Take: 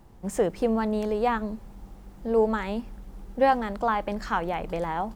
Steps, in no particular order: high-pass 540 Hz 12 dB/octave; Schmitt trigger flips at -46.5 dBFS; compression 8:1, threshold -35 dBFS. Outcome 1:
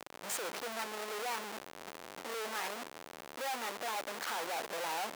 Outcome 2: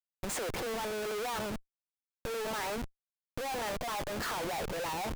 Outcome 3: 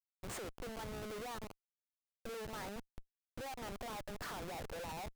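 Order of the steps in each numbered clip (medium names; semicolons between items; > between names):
Schmitt trigger > compression > high-pass; high-pass > Schmitt trigger > compression; compression > high-pass > Schmitt trigger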